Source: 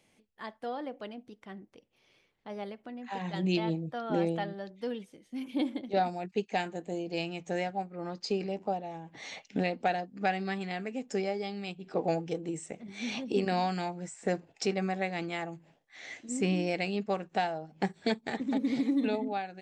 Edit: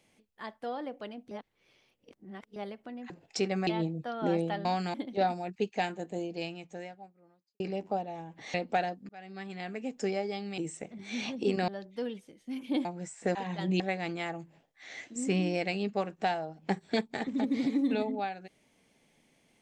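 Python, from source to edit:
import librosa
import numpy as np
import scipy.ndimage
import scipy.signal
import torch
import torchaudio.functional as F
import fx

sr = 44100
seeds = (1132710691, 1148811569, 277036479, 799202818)

y = fx.edit(x, sr, fx.reverse_span(start_s=1.31, length_s=1.25),
    fx.swap(start_s=3.1, length_s=0.45, other_s=14.36, other_length_s=0.57),
    fx.swap(start_s=4.53, length_s=1.17, other_s=13.57, other_length_s=0.29),
    fx.fade_out_span(start_s=6.96, length_s=1.4, curve='qua'),
    fx.cut(start_s=9.3, length_s=0.35),
    fx.fade_in_span(start_s=10.2, length_s=0.78),
    fx.cut(start_s=11.69, length_s=0.78), tone=tone)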